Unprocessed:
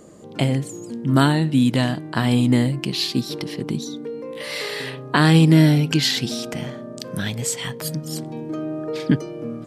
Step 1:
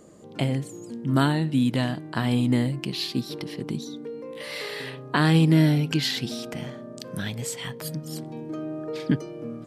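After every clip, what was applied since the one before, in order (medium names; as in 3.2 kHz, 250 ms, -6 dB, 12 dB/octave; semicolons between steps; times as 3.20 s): dynamic bell 6.9 kHz, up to -4 dB, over -41 dBFS, Q 1.2; trim -5 dB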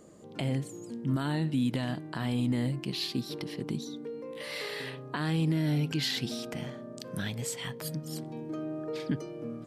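peak limiter -17 dBFS, peak gain reduction 10 dB; trim -3.5 dB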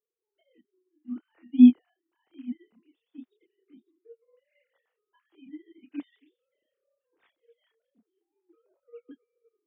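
formants replaced by sine waves; chorus voices 2, 0.21 Hz, delay 28 ms, depth 4.8 ms; upward expansion 2.5:1, over -46 dBFS; trim +9 dB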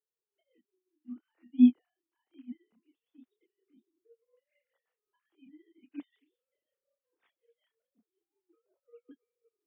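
tremolo 5.5 Hz, depth 62%; trim -5.5 dB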